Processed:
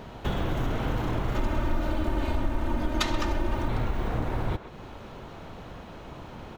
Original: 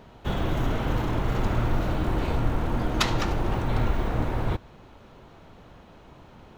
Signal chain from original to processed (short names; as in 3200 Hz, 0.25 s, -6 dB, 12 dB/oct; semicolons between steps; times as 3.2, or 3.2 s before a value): 1.34–3.68 comb 3.3 ms, depth 82%; compressor 2.5:1, threshold -36 dBFS, peak gain reduction 14.5 dB; speakerphone echo 0.13 s, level -10 dB; gain +7 dB